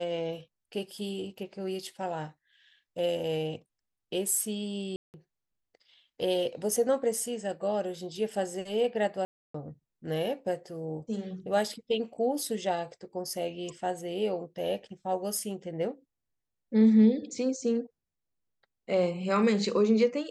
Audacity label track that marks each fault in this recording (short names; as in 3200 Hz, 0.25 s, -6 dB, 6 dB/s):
4.960000	5.140000	gap 0.179 s
9.250000	9.540000	gap 0.294 s